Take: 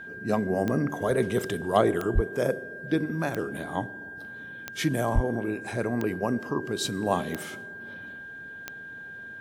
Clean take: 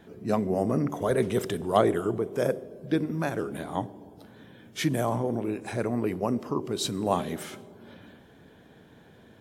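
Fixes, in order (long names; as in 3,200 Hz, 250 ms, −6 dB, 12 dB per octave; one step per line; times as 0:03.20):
click removal
notch filter 1,600 Hz, Q 30
high-pass at the plosives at 0:02.14/0:05.14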